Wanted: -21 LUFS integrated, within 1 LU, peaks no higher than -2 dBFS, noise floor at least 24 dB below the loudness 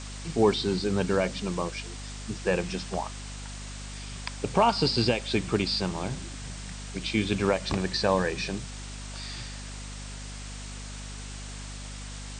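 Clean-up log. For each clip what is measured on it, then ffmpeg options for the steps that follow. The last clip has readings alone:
hum 50 Hz; harmonics up to 250 Hz; hum level -37 dBFS; noise floor -39 dBFS; noise floor target -54 dBFS; loudness -29.5 LUFS; peak -10.0 dBFS; loudness target -21.0 LUFS
-> -af "bandreject=f=50:t=h:w=4,bandreject=f=100:t=h:w=4,bandreject=f=150:t=h:w=4,bandreject=f=200:t=h:w=4,bandreject=f=250:t=h:w=4"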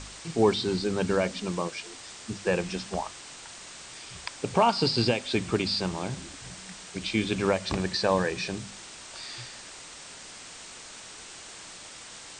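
hum none; noise floor -45 dBFS; noise floor target -53 dBFS
-> -af "afftdn=nr=8:nf=-45"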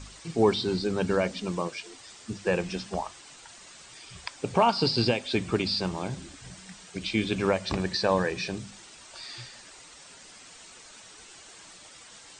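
noise floor -50 dBFS; noise floor target -52 dBFS
-> -af "afftdn=nr=6:nf=-50"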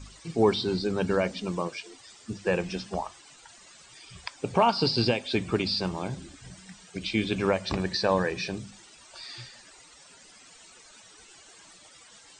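noise floor -53 dBFS; loudness -28.0 LUFS; peak -10.0 dBFS; loudness target -21.0 LUFS
-> -af "volume=7dB"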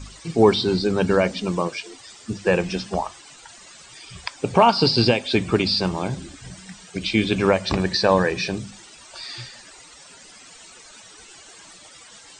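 loudness -21.0 LUFS; peak -3.0 dBFS; noise floor -46 dBFS

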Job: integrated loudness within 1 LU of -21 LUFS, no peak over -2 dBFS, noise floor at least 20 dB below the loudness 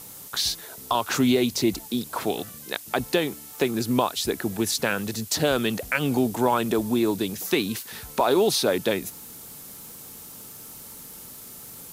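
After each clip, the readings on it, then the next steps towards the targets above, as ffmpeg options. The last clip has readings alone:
noise floor -43 dBFS; noise floor target -45 dBFS; loudness -25.0 LUFS; peak -7.5 dBFS; loudness target -21.0 LUFS
-> -af "afftdn=nr=6:nf=-43"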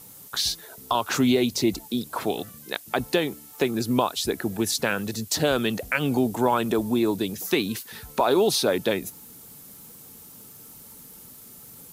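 noise floor -46 dBFS; loudness -25.0 LUFS; peak -7.5 dBFS; loudness target -21.0 LUFS
-> -af "volume=4dB"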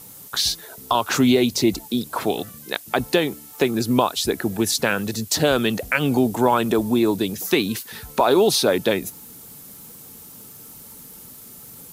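loudness -21.0 LUFS; peak -3.5 dBFS; noise floor -42 dBFS

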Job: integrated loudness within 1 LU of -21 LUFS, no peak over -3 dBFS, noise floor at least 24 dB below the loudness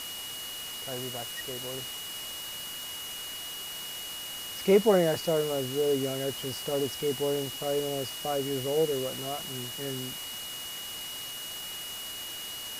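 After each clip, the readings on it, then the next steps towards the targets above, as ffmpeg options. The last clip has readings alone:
steady tone 2900 Hz; tone level -39 dBFS; noise floor -39 dBFS; noise floor target -55 dBFS; loudness -31.0 LUFS; peak -10.0 dBFS; loudness target -21.0 LUFS
-> -af "bandreject=f=2.9k:w=30"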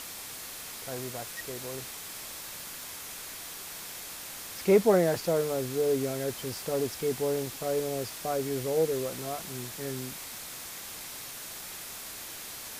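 steady tone none; noise floor -42 dBFS; noise floor target -56 dBFS
-> -af "afftdn=nr=14:nf=-42"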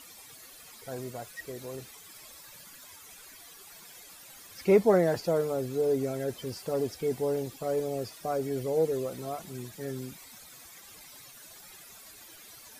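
noise floor -51 dBFS; noise floor target -55 dBFS
-> -af "afftdn=nr=6:nf=-51"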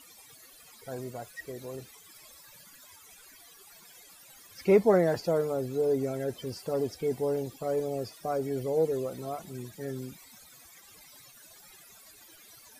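noise floor -55 dBFS; loudness -30.5 LUFS; peak -10.5 dBFS; loudness target -21.0 LUFS
-> -af "volume=9.5dB,alimiter=limit=-3dB:level=0:latency=1"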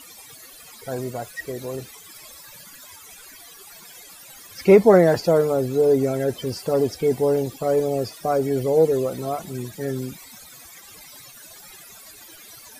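loudness -21.0 LUFS; peak -3.0 dBFS; noise floor -45 dBFS

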